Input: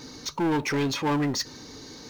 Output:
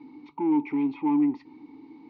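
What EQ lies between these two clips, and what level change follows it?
vowel filter u; air absorption 370 m; +6.5 dB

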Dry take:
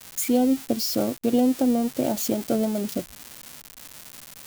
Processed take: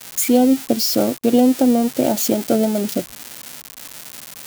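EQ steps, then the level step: HPF 140 Hz 6 dB/oct; notch 1100 Hz, Q 14; +7.5 dB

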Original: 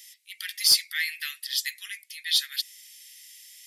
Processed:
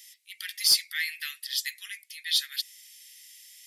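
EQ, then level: low shelf 150 Hz -3 dB; -2.0 dB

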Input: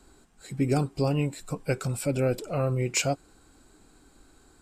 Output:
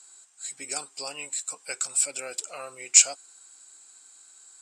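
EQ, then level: HPF 820 Hz 12 dB/oct; synth low-pass 7800 Hz, resonance Q 3.8; high shelf 2200 Hz +10.5 dB; -5.0 dB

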